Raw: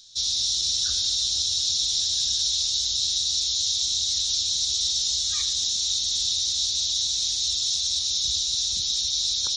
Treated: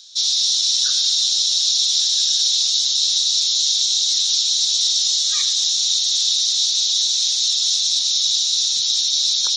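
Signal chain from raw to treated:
meter weighting curve A
level +6 dB

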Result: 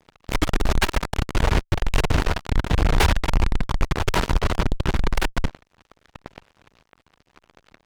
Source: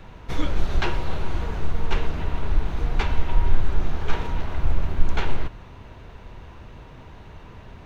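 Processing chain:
fuzz pedal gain 30 dB, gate −37 dBFS
harmonic generator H 3 −26 dB, 5 −36 dB, 6 −34 dB, 7 −16 dB, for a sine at −7.5 dBFS

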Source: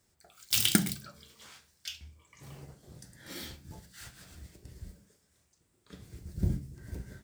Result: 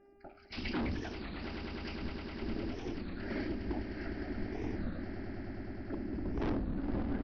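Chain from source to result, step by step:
spectral magnitudes quantised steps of 30 dB
random phases in short frames
parametric band 500 Hz +5.5 dB 2.9 octaves
in parallel at −7 dB: log-companded quantiser 4 bits
on the sum: phaser with its sweep stopped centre 720 Hz, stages 8
hum with harmonics 400 Hz, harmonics 7, −70 dBFS −7 dB per octave
tilt shelving filter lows +7 dB, about 750 Hz
hard clipping −36 dBFS, distortion 2 dB
downsampling to 11,025 Hz
on a send: echo that builds up and dies away 102 ms, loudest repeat 8, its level −11.5 dB
on the sum: wow of a warped record 33 1/3 rpm, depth 250 cents
level +3.5 dB

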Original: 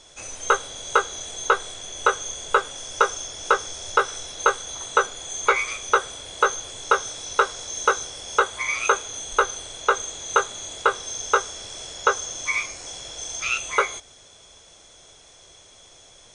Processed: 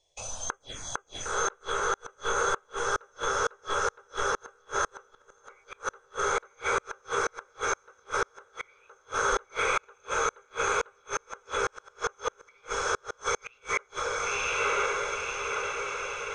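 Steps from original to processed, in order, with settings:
Bessel low-pass filter 5,800 Hz, order 8
noise gate −47 dBFS, range −22 dB
phaser swept by the level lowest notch 240 Hz, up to 4,000 Hz, full sweep at −17.5 dBFS
feedback delay with all-pass diffusion 1,024 ms, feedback 64%, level −4.5 dB
gate with flip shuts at −18 dBFS, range −37 dB
level +3 dB

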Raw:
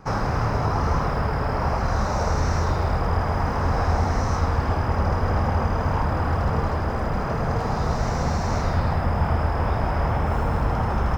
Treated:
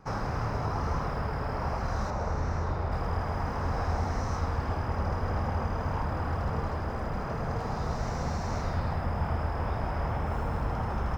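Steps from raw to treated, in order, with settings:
0:02.10–0:02.92: high-shelf EQ 3,600 Hz −10.5 dB
level −8 dB

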